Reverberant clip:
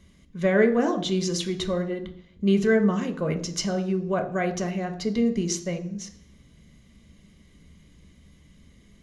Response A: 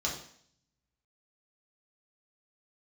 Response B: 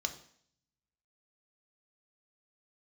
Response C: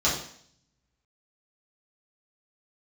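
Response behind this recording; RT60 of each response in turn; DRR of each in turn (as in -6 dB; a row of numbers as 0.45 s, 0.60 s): B; 0.60 s, 0.60 s, 0.60 s; -4.0 dB, 5.5 dB, -9.0 dB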